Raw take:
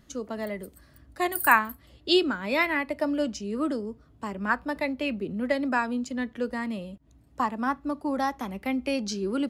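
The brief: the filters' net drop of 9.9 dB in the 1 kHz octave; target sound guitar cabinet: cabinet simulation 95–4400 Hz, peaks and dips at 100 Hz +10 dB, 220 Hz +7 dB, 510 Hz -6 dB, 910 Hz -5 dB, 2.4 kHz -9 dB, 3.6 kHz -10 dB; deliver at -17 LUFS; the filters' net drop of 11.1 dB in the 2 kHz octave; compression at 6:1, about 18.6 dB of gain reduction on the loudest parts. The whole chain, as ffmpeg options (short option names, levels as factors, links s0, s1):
-af "equalizer=f=1000:t=o:g=-6.5,equalizer=f=2000:t=o:g=-9,acompressor=threshold=0.0112:ratio=6,highpass=95,equalizer=f=100:t=q:w=4:g=10,equalizer=f=220:t=q:w=4:g=7,equalizer=f=510:t=q:w=4:g=-6,equalizer=f=910:t=q:w=4:g=-5,equalizer=f=2400:t=q:w=4:g=-9,equalizer=f=3600:t=q:w=4:g=-10,lowpass=f=4400:w=0.5412,lowpass=f=4400:w=1.3066,volume=15"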